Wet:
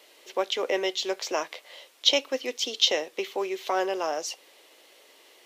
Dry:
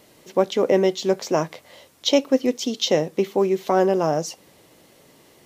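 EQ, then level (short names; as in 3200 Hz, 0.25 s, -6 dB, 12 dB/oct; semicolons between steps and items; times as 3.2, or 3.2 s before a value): HPF 370 Hz 24 dB/oct; dynamic EQ 480 Hz, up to -5 dB, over -30 dBFS, Q 0.91; bell 3000 Hz +8 dB 1.5 oct; -4.0 dB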